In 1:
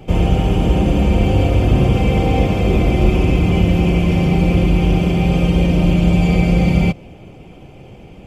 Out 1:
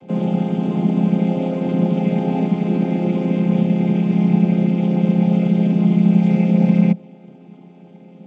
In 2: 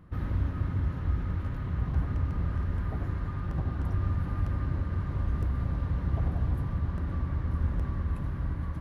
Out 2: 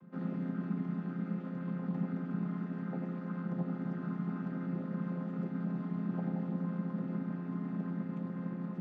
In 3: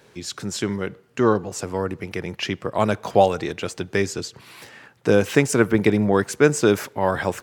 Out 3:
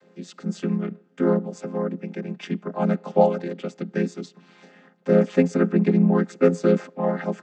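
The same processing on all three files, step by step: vocoder on a held chord minor triad, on F3

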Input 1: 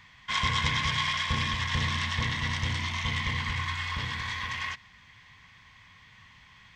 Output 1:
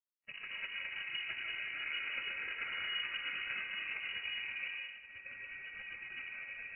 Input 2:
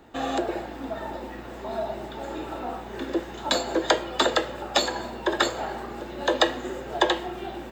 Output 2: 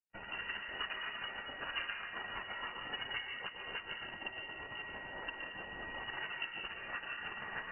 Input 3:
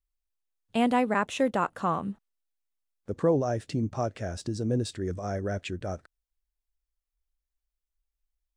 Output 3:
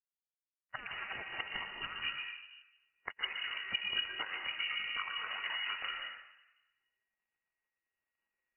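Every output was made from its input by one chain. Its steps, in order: recorder AGC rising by 30 dB/s; spectral gate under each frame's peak -25 dB weak; low-pass that closes with the level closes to 1.7 kHz, closed at -37 dBFS; bass shelf 190 Hz +8.5 dB; compression 6:1, threshold -48 dBFS; whistle 1 kHz -59 dBFS; crossover distortion -55 dBFS; distance through air 120 m; plate-style reverb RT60 1.6 s, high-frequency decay 0.6×, pre-delay 105 ms, DRR 0 dB; frequency inversion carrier 2.9 kHz; spectral contrast expander 1.5:1; trim +11.5 dB

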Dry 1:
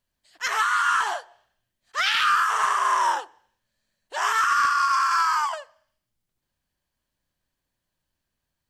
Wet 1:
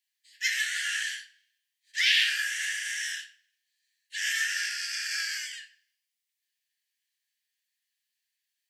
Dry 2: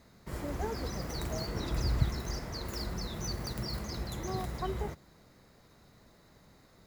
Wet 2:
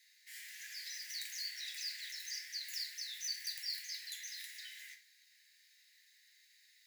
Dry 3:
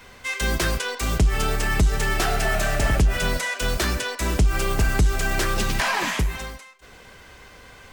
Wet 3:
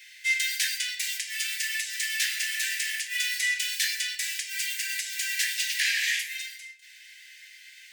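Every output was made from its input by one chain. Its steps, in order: steep high-pass 1.7 kHz 96 dB/octave; simulated room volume 46 m³, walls mixed, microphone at 0.46 m

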